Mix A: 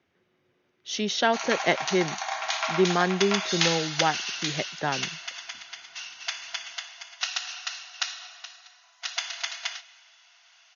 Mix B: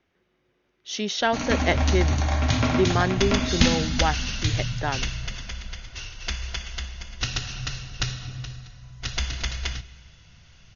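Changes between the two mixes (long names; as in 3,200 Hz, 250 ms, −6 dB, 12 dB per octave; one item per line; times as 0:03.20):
background: remove linear-phase brick-wall high-pass 630 Hz
master: remove high-pass filter 83 Hz 24 dB per octave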